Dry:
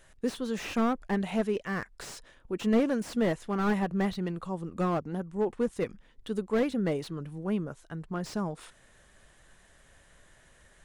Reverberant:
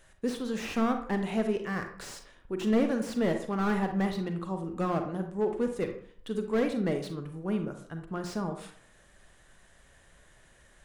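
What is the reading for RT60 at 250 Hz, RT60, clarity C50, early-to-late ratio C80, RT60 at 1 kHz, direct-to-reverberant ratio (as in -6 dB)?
0.55 s, 0.55 s, 8.0 dB, 12.0 dB, 0.60 s, 6.0 dB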